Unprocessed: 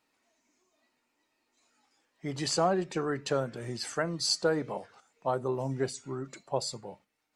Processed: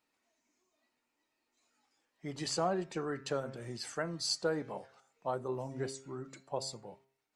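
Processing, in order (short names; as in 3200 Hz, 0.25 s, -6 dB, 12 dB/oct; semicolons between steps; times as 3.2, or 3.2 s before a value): de-hum 133.8 Hz, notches 17; gain -5.5 dB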